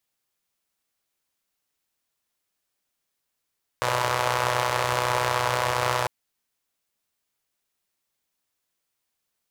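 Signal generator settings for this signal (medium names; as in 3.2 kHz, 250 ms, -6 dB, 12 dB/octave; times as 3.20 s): four-cylinder engine model, steady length 2.25 s, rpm 3700, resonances 110/580/930 Hz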